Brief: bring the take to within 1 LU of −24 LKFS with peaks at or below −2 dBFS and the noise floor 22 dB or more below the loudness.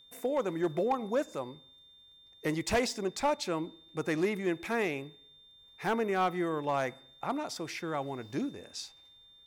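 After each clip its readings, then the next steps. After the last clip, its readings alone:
share of clipped samples 0.5%; peaks flattened at −22.0 dBFS; interfering tone 3,600 Hz; level of the tone −56 dBFS; integrated loudness −33.0 LKFS; sample peak −22.0 dBFS; target loudness −24.0 LKFS
→ clipped peaks rebuilt −22 dBFS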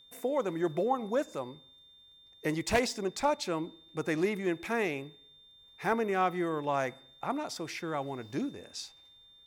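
share of clipped samples 0.0%; interfering tone 3,600 Hz; level of the tone −56 dBFS
→ notch filter 3,600 Hz, Q 30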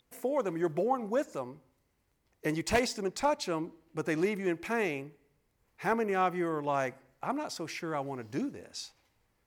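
interfering tone none found; integrated loudness −33.0 LKFS; sample peak −13.0 dBFS; target loudness −24.0 LKFS
→ level +9 dB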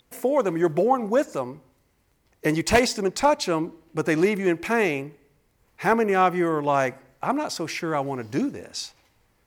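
integrated loudness −24.0 LKFS; sample peak −4.0 dBFS; background noise floor −66 dBFS

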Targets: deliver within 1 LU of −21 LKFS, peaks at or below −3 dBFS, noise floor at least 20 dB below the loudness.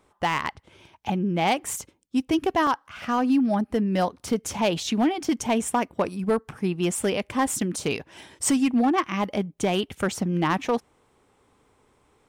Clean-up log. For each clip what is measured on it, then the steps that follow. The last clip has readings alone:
share of clipped samples 0.7%; peaks flattened at −15.0 dBFS; number of dropouts 3; longest dropout 1.5 ms; integrated loudness −25.5 LKFS; sample peak −15.0 dBFS; target loudness −21.0 LKFS
→ clipped peaks rebuilt −15 dBFS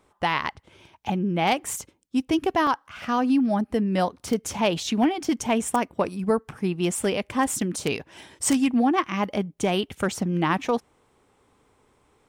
share of clipped samples 0.0%; number of dropouts 3; longest dropout 1.5 ms
→ repair the gap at 0:01.71/0:02.67/0:06.98, 1.5 ms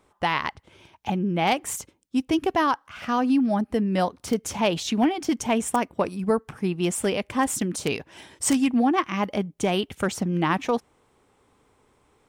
number of dropouts 0; integrated loudness −25.0 LKFS; sample peak −6.0 dBFS; target loudness −21.0 LKFS
→ level +4 dB
brickwall limiter −3 dBFS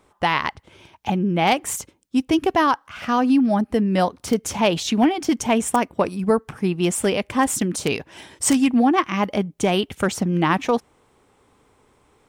integrated loudness −21.0 LKFS; sample peak −3.0 dBFS; background noise floor −61 dBFS

